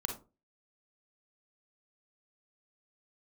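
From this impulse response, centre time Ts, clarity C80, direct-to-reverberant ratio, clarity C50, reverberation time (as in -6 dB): 23 ms, 14.0 dB, 2.0 dB, 5.0 dB, 0.30 s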